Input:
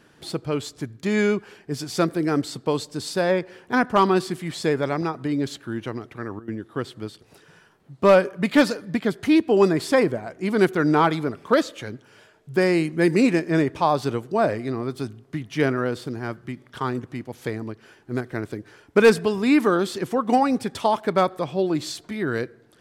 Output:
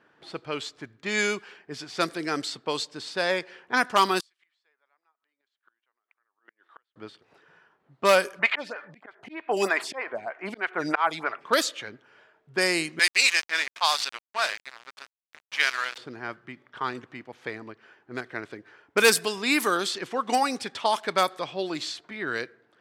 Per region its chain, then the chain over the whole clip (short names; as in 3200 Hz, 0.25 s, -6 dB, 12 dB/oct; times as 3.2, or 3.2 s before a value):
4.2–6.96 HPF 1000 Hz + bell 3400 Hz +3.5 dB 1.9 oct + flipped gate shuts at -31 dBFS, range -36 dB
8.39–11.41 band shelf 1300 Hz +9.5 dB 2.5 oct + auto swell 0.302 s + photocell phaser 3.2 Hz
12.99–15.98 HPF 1000 Hz + high shelf 2000 Hz +11.5 dB + sample gate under -28.5 dBFS
whole clip: low-pass opened by the level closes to 1300 Hz, open at -14 dBFS; tilt +4.5 dB/oct; gain -2 dB